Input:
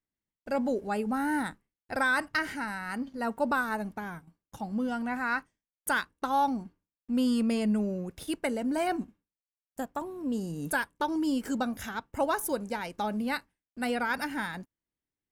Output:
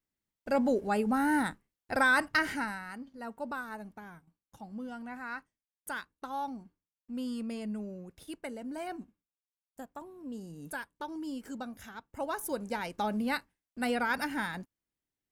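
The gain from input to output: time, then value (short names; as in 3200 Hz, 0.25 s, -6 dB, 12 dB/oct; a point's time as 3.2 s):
2.59 s +1.5 dB
2.99 s -10 dB
12.05 s -10 dB
12.79 s -0.5 dB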